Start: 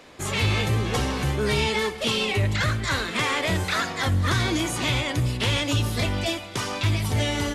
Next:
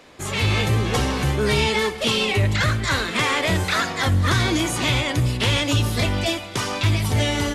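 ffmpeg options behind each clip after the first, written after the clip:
-af "dynaudnorm=f=290:g=3:m=3.5dB"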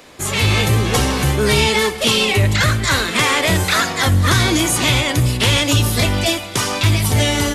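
-af "highshelf=f=8.1k:g=11,volume=4.5dB"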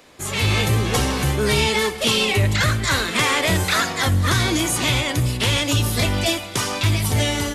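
-af "dynaudnorm=f=100:g=7:m=11.5dB,volume=-6.5dB"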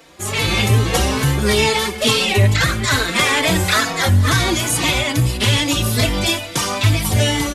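-filter_complex "[0:a]asplit=2[a][b];[b]adelay=4,afreqshift=2.3[c];[a][c]amix=inputs=2:normalize=1,volume=6dB"

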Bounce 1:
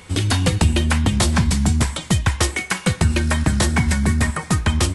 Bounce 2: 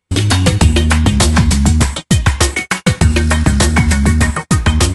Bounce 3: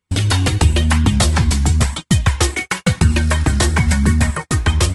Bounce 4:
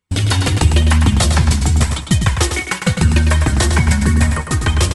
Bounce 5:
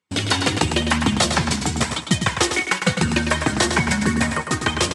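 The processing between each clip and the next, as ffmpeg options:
-af "agate=range=-39dB:threshold=-25dB:ratio=16:detection=peak,volume=6.5dB"
-af "flanger=delay=0.6:depth=2.4:regen=-37:speed=0.98:shape=triangular"
-af "aecho=1:1:104|208|312:0.447|0.0938|0.0197"
-af "highpass=200,lowpass=7.8k"

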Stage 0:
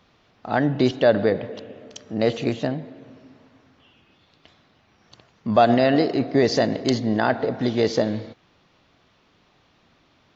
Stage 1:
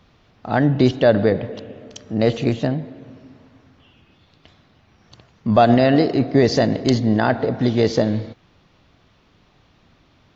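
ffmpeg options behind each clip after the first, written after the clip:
-af "lowshelf=f=150:g=10.5,volume=1.5dB"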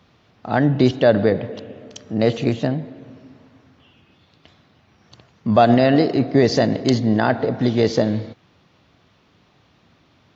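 -af "highpass=81"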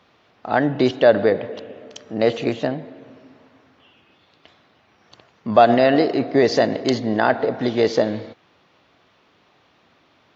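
-af "bass=f=250:g=-12,treble=f=4k:g=-5,volume=2dB"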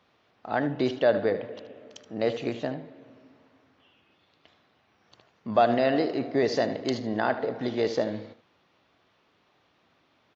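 -af "aecho=1:1:76:0.224,volume=-8.5dB"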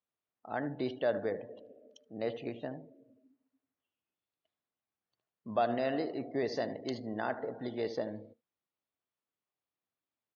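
-af "afftdn=nr=22:nf=-44,volume=-9dB"

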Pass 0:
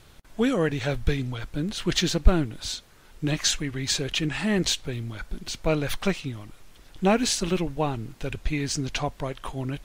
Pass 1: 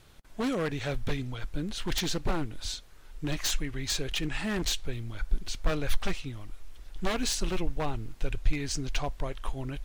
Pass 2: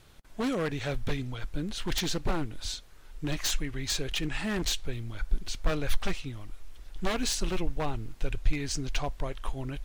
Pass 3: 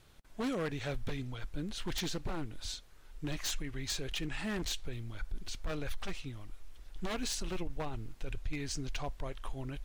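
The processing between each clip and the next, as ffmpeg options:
-af "aeval=exprs='0.119*(abs(mod(val(0)/0.119+3,4)-2)-1)':c=same,asubboost=boost=5:cutoff=65,volume=-4.5dB"
-af anull
-af "alimiter=limit=-23dB:level=0:latency=1:release=29,volume=-5dB"

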